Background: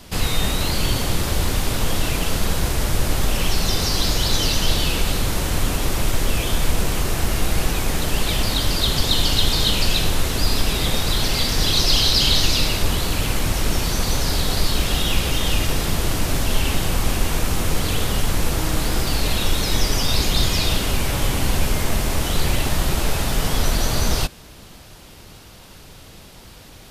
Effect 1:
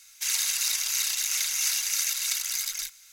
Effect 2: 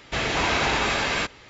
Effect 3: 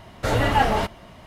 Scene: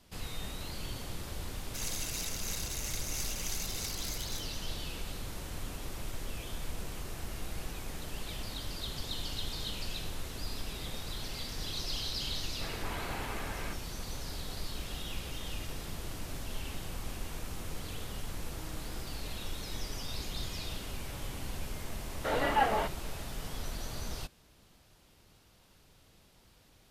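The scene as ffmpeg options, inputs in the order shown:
-filter_complex "[0:a]volume=-19.5dB[a];[2:a]lowpass=2.1k[b];[3:a]highpass=280,lowpass=3.2k[c];[1:a]atrim=end=3.12,asetpts=PTS-STARTPTS,volume=-12.5dB,afade=t=in:d=0.004:c=hsin,afade=t=out:st=3.116:d=0.004:c=hsin,adelay=1530[d];[b]atrim=end=1.49,asetpts=PTS-STARTPTS,volume=-16dB,afade=t=in:d=0.004:c=hsin,afade=t=out:st=1.486:d=0.004:c=hsin,adelay=12480[e];[c]atrim=end=1.26,asetpts=PTS-STARTPTS,volume=-7.5dB,afade=t=in:d=0.004:c=hsin,afade=t=out:st=1.256:d=0.004:c=hsin,adelay=22010[f];[a][d][e][f]amix=inputs=4:normalize=0"

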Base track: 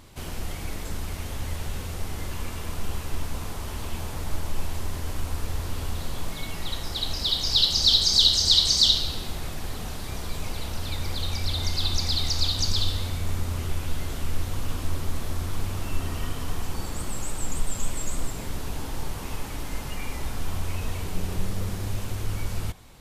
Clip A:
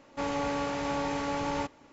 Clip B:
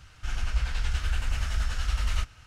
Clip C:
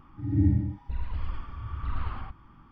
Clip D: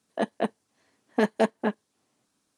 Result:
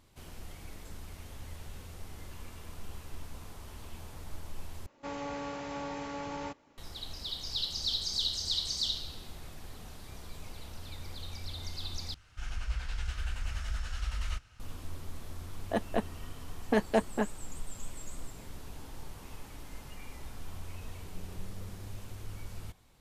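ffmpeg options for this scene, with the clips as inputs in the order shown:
-filter_complex "[0:a]volume=-13.5dB,asplit=3[a][b][c];[a]atrim=end=4.864[d];[1:a]atrim=end=1.92,asetpts=PTS-STARTPTS,volume=-7.5dB[e];[b]atrim=start=6.776:end=12.144[f];[2:a]atrim=end=2.46,asetpts=PTS-STARTPTS,volume=-7.5dB[g];[c]atrim=start=14.596[h];[4:a]atrim=end=2.57,asetpts=PTS-STARTPTS,volume=-4dB,afade=t=in:d=0.004:c=hsin,afade=t=out:st=2.566:d=0.004:c=hsin,adelay=15540[i];[d][e]acrossfade=d=0.004:c1=hsin:c2=hsin[j];[j][f]acrossfade=d=0.004:c1=hsin:c2=hsin[k];[k][g]acrossfade=d=0.004:c1=hsin:c2=hsin[l];[l][h]acrossfade=d=0.004:c1=hsin:c2=hsin[m];[m][i]amix=inputs=2:normalize=0"

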